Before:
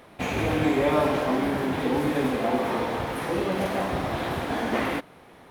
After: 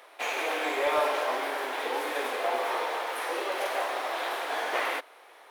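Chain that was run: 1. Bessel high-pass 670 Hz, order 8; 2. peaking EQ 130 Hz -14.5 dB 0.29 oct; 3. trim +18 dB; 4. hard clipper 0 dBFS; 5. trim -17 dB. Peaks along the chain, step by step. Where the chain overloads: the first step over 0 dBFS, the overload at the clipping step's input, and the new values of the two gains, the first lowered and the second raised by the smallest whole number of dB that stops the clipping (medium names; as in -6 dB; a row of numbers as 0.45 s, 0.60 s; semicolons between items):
-14.5 dBFS, -14.5 dBFS, +3.5 dBFS, 0.0 dBFS, -17.0 dBFS; step 3, 3.5 dB; step 3 +14 dB, step 5 -13 dB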